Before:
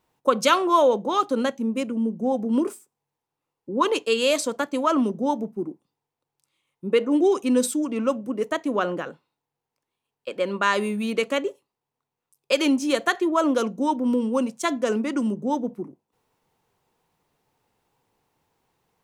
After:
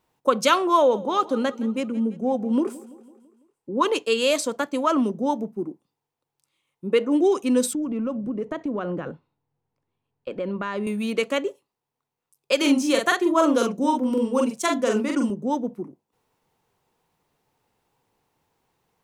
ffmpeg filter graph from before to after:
-filter_complex "[0:a]asettb=1/sr,asplit=3[a][b][c];[a]atrim=end=0.774[d];[b]atrim=start=0.77:end=3.76,asetpts=PTS-STARTPTS,afade=t=in:d=0.004:c=qsin,afade=t=out:st=2.986:d=0.004:c=qsin,highshelf=f=6.3k:g=-5.5,aecho=1:1:167|334|501|668|835:0.112|0.0617|0.0339|0.0187|0.0103,atrim=end_sample=131859[e];[c]atrim=start=3.756[f];[d][e]acrossfade=d=0.004:c1=hsin:c2=qsin[g];[g][f]acrossfade=d=0.004:c1=qsin:c2=hsin,asettb=1/sr,asplit=3[h][i][j];[h]atrim=end=7.734[k];[i]atrim=start=7.73:end=10.87,asetpts=PTS-STARTPTS,afade=t=in:d=0.004:c=qsin,afade=t=out:st=3.136:d=0.004:c=qsin,aemphasis=mode=reproduction:type=riaa,acompressor=threshold=-26dB:ratio=3:attack=3.2:release=140:knee=1:detection=peak[l];[j]atrim=start=10.866[m];[k][l]acrossfade=d=0.004:c1=hsin:c2=qsin[n];[n][m]acrossfade=d=0.004:c1=qsin:c2=hsin,asettb=1/sr,asplit=3[o][p][q];[o]atrim=end=12.574[r];[p]atrim=start=12.57:end=15.3,asetpts=PTS-STARTPTS,afade=t=in:d=0.004:c=qsin,afade=t=out:st=2.726:d=0.004:c=qsin,highshelf=f=6.3k:g=3.5,asplit=2[s][t];[t]adelay=43,volume=-3dB[u];[s][u]amix=inputs=2:normalize=0,atrim=end_sample=120393[v];[q]atrim=start=15.296[w];[r][v]acrossfade=d=0.004:c1=hsin:c2=qsin[x];[x][w]acrossfade=d=0.004:c1=qsin:c2=hsin"

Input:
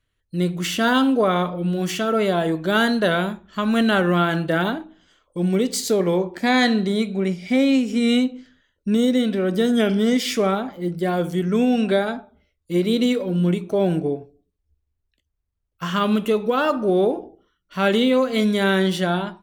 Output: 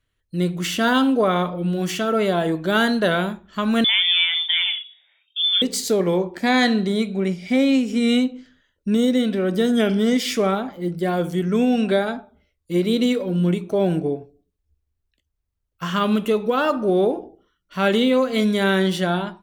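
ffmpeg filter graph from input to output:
-filter_complex "[0:a]asettb=1/sr,asplit=3[a][b][c];[a]atrim=end=3.844[d];[b]atrim=start=3.84:end=5.62,asetpts=PTS-STARTPTS,afade=t=in:d=0.004:c=qsin,afade=t=out:st=1.776:d=0.004:c=qsin,lowpass=f=3.1k:t=q:w=0.5098,lowpass=f=3.1k:t=q:w=0.6013,lowpass=f=3.1k:t=q:w=0.9,lowpass=f=3.1k:t=q:w=2.563,afreqshift=-3700,highpass=1.4k[e];[c]atrim=start=5.616[f];[d][e]acrossfade=d=0.004:c1=hsin:c2=qsin[g];[g][f]acrossfade=d=0.004:c1=qsin:c2=hsin"

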